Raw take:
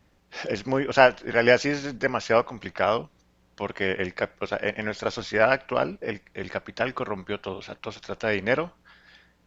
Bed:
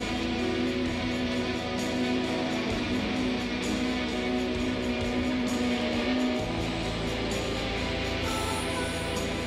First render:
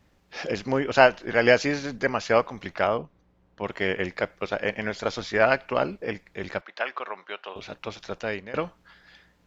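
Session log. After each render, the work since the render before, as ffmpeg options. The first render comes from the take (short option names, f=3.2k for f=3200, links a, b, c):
-filter_complex "[0:a]asettb=1/sr,asplit=3[a][b][c];[a]atrim=end=2.874[d];[b]atrim=start=2.87:end=3.64,asetpts=PTS-STARTPTS,afade=t=in:d=0.004:c=qsin,afade=t=out:st=0.766:d=0.004:c=qsin,lowpass=f=1.1k:p=1[e];[c]atrim=start=3.636[f];[d][e]acrossfade=d=0.004:c1=hsin:c2=qsin[g];[g][f]acrossfade=d=0.004:c1=qsin:c2=hsin,asettb=1/sr,asplit=3[h][i][j];[h]atrim=end=6.614[k];[i]atrim=start=6.61:end=7.56,asetpts=PTS-STARTPTS,afade=t=in:d=0.004:c=qsin,afade=t=out:st=0.946:d=0.004:c=qsin,highpass=690,lowpass=3.8k[l];[j]atrim=start=7.556[m];[k][l]acrossfade=d=0.004:c1=hsin:c2=qsin[n];[n][m]acrossfade=d=0.004:c1=qsin:c2=hsin,asplit=2[o][p];[o]atrim=end=8.54,asetpts=PTS-STARTPTS,afade=t=out:st=8.1:d=0.44:silence=0.0749894[q];[p]atrim=start=8.54,asetpts=PTS-STARTPTS,afade=t=in:d=0.004:c=hsin:silence=0.0749894[r];[q][r]concat=n=2:v=0:a=1"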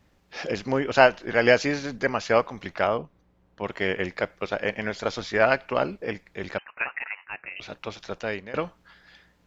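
-filter_complex "[0:a]asettb=1/sr,asplit=3[a][b][c];[a]atrim=end=6.584[d];[b]atrim=start=6.58:end=7.6,asetpts=PTS-STARTPTS,afade=t=in:d=0.004:c=qsin,afade=t=out:st=1.016:d=0.004:c=qsin,lowpass=f=2.6k:t=q:w=0.5098,lowpass=f=2.6k:t=q:w=0.6013,lowpass=f=2.6k:t=q:w=0.9,lowpass=f=2.6k:t=q:w=2.563,afreqshift=-3100[e];[c]atrim=start=7.596[f];[d][e]acrossfade=d=0.004:c1=hsin:c2=qsin[g];[g][f]acrossfade=d=0.004:c1=qsin:c2=hsin"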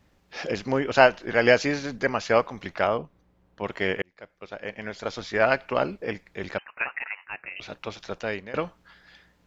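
-filter_complex "[0:a]asplit=2[a][b];[a]atrim=end=4.02,asetpts=PTS-STARTPTS,afade=t=out:st=4.016:d=0.004:c=hsin[c];[b]atrim=start=4.02,asetpts=PTS-STARTPTS,afade=t=in:d=1.6[d];[c][d]concat=n=2:v=0:a=1"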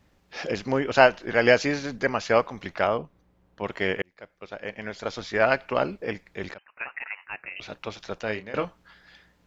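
-filter_complex "[0:a]asettb=1/sr,asplit=3[a][b][c];[a]atrim=end=8.254[d];[b]atrim=start=8.25:end=8.65,asetpts=PTS-STARTPTS,afade=t=in:d=0.004:c=qsin,afade=t=out:st=0.396:d=0.004:c=qsin,asplit=2[e][f];[f]adelay=28,volume=-9.5dB[g];[e][g]amix=inputs=2:normalize=0,atrim=end_sample=17640[h];[c]atrim=start=8.646[i];[d][h]acrossfade=d=0.004:c1=hsin:c2=qsin[j];[j][i]acrossfade=d=0.004:c1=qsin:c2=hsin,asplit=2[k][l];[k]atrim=end=6.54,asetpts=PTS-STARTPTS,afade=t=out:st=6.536:d=0.004:c=hsin:silence=0.11885[m];[l]atrim=start=6.54,asetpts=PTS-STARTPTS,afade=t=in:d=0.66:silence=0.11885[n];[m][n]concat=n=2:v=0:a=1"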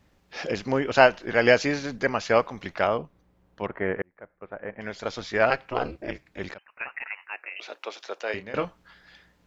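-filter_complex "[0:a]asettb=1/sr,asplit=3[a][b][c];[a]atrim=end=3.664[d];[b]atrim=start=3.66:end=4.81,asetpts=PTS-STARTPTS,afade=t=in:d=0.004:c=qsin,afade=t=out:st=1.146:d=0.004:c=qsin,lowpass=f=1.8k:w=0.5412,lowpass=f=1.8k:w=1.3066[e];[c]atrim=start=4.806[f];[d][e]acrossfade=d=0.004:c1=hsin:c2=qsin[g];[g][f]acrossfade=d=0.004:c1=qsin:c2=hsin,asettb=1/sr,asplit=3[h][i][j];[h]atrim=end=5.504[k];[i]atrim=start=5.5:end=6.39,asetpts=PTS-STARTPTS,afade=t=in:d=0.004:c=qsin,afade=t=out:st=0.886:d=0.004:c=qsin,aeval=exprs='val(0)*sin(2*PI*130*n/s)':c=same[l];[j]atrim=start=6.386[m];[k][l]acrossfade=d=0.004:c1=hsin:c2=qsin[n];[n][m]acrossfade=d=0.004:c1=qsin:c2=hsin,asettb=1/sr,asplit=3[o][p][q];[o]atrim=end=7.254[r];[p]atrim=start=7.25:end=8.34,asetpts=PTS-STARTPTS,afade=t=in:d=0.004:c=qsin,afade=t=out:st=1.086:d=0.004:c=qsin,highpass=f=360:w=0.5412,highpass=f=360:w=1.3066[s];[q]atrim=start=8.336[t];[r][s]acrossfade=d=0.004:c1=hsin:c2=qsin[u];[u][t]acrossfade=d=0.004:c1=qsin:c2=hsin"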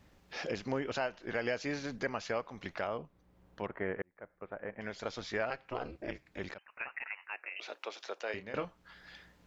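-af "acompressor=threshold=-48dB:ratio=1.5,alimiter=limit=-21dB:level=0:latency=1:release=211"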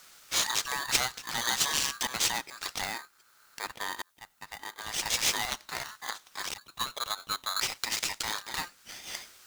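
-af "aexciter=amount=8.6:drive=6.6:freq=2.7k,aeval=exprs='val(0)*sgn(sin(2*PI*1400*n/s))':c=same"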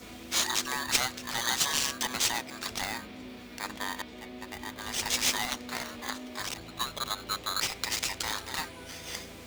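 -filter_complex "[1:a]volume=-16dB[a];[0:a][a]amix=inputs=2:normalize=0"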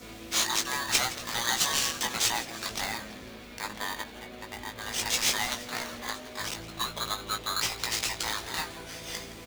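-filter_complex "[0:a]asplit=2[a][b];[b]adelay=18,volume=-5dB[c];[a][c]amix=inputs=2:normalize=0,asplit=7[d][e][f][g][h][i][j];[e]adelay=166,afreqshift=-140,volume=-16dB[k];[f]adelay=332,afreqshift=-280,volume=-20.4dB[l];[g]adelay=498,afreqshift=-420,volume=-24.9dB[m];[h]adelay=664,afreqshift=-560,volume=-29.3dB[n];[i]adelay=830,afreqshift=-700,volume=-33.7dB[o];[j]adelay=996,afreqshift=-840,volume=-38.2dB[p];[d][k][l][m][n][o][p]amix=inputs=7:normalize=0"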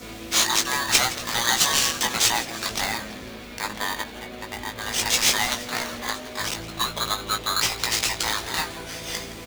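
-af "volume=6.5dB"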